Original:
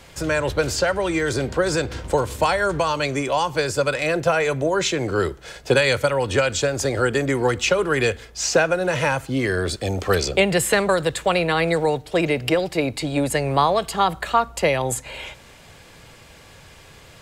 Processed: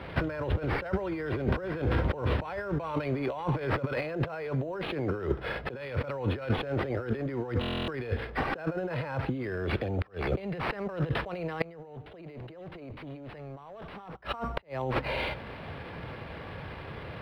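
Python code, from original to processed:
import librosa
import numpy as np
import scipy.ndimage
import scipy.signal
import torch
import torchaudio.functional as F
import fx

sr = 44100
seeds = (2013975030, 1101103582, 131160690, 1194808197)

y = scipy.signal.sosfilt(scipy.signal.butter(2, 62.0, 'highpass', fs=sr, output='sos'), x)
y = fx.high_shelf(y, sr, hz=5300.0, db=-3.0)
y = fx.over_compress(y, sr, threshold_db=-31.0, ratio=-1.0)
y = fx.fold_sine(y, sr, drive_db=fx.line((11.6, 14.0), (14.15, 19.0)), ceiling_db=-8.5, at=(11.6, 14.15), fade=0.02)
y = fx.gate_flip(y, sr, shuts_db=-12.0, range_db=-29)
y = fx.sample_hold(y, sr, seeds[0], rate_hz=6800.0, jitter_pct=0)
y = fx.air_absorb(y, sr, metres=420.0)
y = fx.buffer_glitch(y, sr, at_s=(7.6,), block=1024, repeats=11)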